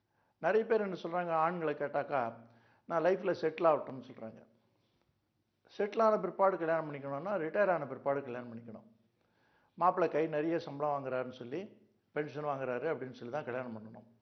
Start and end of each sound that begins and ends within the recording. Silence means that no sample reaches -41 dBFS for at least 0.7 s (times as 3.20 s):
5.79–8.76 s